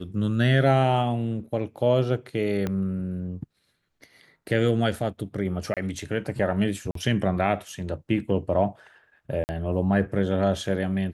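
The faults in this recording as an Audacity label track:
2.670000	2.670000	click −15 dBFS
5.740000	5.770000	drop-out 27 ms
6.910000	6.950000	drop-out 43 ms
9.440000	9.490000	drop-out 49 ms

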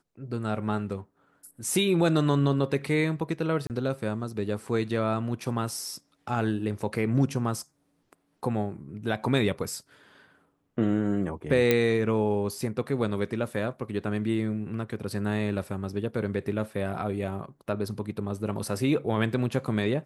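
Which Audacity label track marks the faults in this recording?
3.670000	3.700000	drop-out 28 ms
11.710000	11.710000	click −8 dBFS

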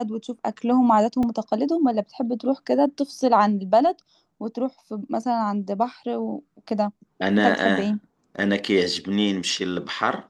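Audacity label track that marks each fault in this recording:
1.230000	1.230000	drop-out 2.3 ms

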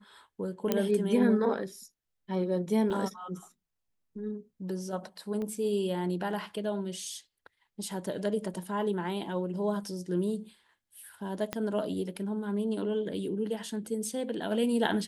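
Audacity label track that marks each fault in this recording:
0.720000	0.720000	click −12 dBFS
2.900000	2.900000	drop-out 2.2 ms
5.420000	5.420000	click −26 dBFS
8.540000	8.540000	drop-out 2.6 ms
11.530000	11.530000	click −16 dBFS

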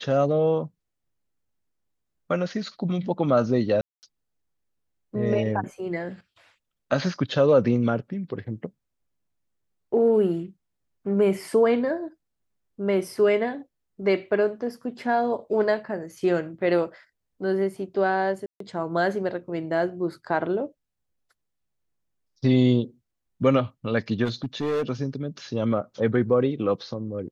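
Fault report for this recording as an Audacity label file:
3.810000	4.030000	drop-out 219 ms
18.460000	18.600000	drop-out 143 ms
24.240000	24.900000	clipping −22 dBFS

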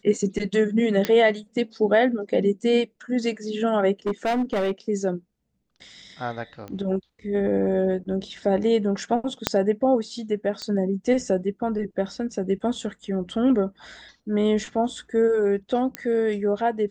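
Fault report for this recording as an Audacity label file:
1.050000	1.050000	click −9 dBFS
4.060000	4.720000	clipping −20 dBFS
6.680000	6.680000	click −24 dBFS
9.470000	9.470000	click −3 dBFS
10.620000	10.620000	click −19 dBFS
15.950000	15.950000	click −12 dBFS

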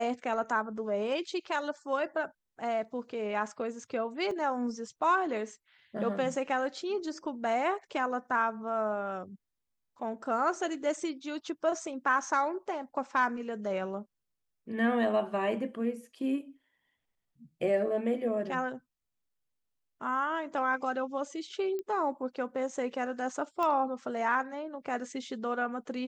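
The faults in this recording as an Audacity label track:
4.310000	4.310000	drop-out 2.2 ms
21.790000	21.790000	click −26 dBFS
23.630000	23.630000	click −21 dBFS

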